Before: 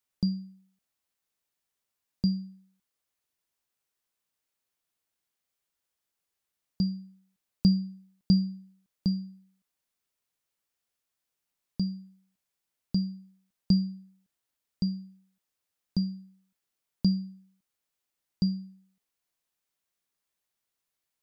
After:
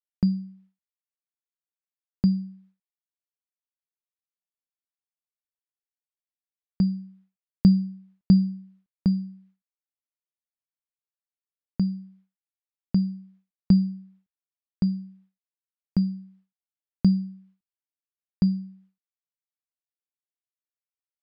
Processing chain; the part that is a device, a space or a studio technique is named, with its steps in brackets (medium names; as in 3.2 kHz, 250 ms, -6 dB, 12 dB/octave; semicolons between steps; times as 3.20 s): hearing-loss simulation (low-pass 2.6 kHz 12 dB/octave; expander -58 dBFS); trim +5.5 dB